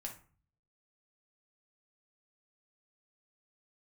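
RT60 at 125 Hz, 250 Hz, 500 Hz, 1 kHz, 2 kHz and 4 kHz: 0.85 s, 0.60 s, 0.40 s, 0.45 s, 0.35 s, 0.25 s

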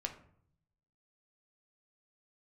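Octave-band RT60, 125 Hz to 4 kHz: 1.1 s, 0.90 s, 0.65 s, 0.60 s, 0.45 s, 0.35 s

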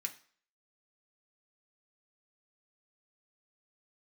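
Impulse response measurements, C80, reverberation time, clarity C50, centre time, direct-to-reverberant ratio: 18.5 dB, 0.50 s, 14.5 dB, 8 ms, 2.0 dB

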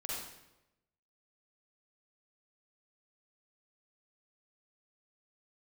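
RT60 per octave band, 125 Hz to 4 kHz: 1.1 s, 1.0 s, 1.0 s, 0.90 s, 0.85 s, 0.75 s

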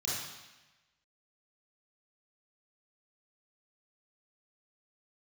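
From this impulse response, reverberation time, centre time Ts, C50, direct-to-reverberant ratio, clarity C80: 1.1 s, 83 ms, -1.5 dB, -7.0 dB, 2.5 dB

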